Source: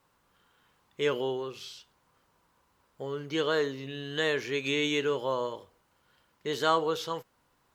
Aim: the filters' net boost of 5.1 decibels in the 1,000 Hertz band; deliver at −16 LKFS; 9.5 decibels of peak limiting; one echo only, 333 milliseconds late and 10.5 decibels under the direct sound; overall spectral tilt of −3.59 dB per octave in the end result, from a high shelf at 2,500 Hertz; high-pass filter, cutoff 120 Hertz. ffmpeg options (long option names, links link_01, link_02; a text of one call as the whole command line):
ffmpeg -i in.wav -af "highpass=120,equalizer=frequency=1000:width_type=o:gain=5.5,highshelf=frequency=2500:gain=3,alimiter=limit=-18dB:level=0:latency=1,aecho=1:1:333:0.299,volume=15dB" out.wav